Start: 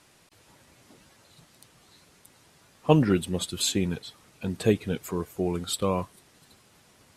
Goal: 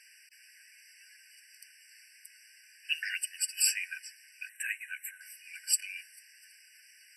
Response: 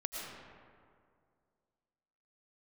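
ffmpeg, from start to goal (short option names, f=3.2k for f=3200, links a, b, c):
-filter_complex "[0:a]asettb=1/sr,asplit=3[a][b][c];[a]atrim=end=4.494[d];[b]atrim=start=4.49:end=5.21,asetpts=PTS-STARTPTS,afade=t=in:d=0.004:c=qsin,afade=t=out:st=0.716:d=0.004:c=qsin,asuperstop=centerf=4500:order=4:qfactor=0.89[e];[c]atrim=start=5.206[f];[d][e]acrossfade=d=0.004:c1=hsin:c2=qsin[g];[g][f]acrossfade=d=0.004:c1=qsin:c2=hsin,aeval=exprs='val(0)+0.00316*(sin(2*PI*50*n/s)+sin(2*PI*2*50*n/s)/2+sin(2*PI*3*50*n/s)/3+sin(2*PI*4*50*n/s)/4+sin(2*PI*5*50*n/s)/5)':c=same,afftfilt=real='re*eq(mod(floor(b*sr/1024/1500),2),1)':imag='im*eq(mod(floor(b*sr/1024/1500),2),1)':win_size=1024:overlap=0.75,volume=6dB"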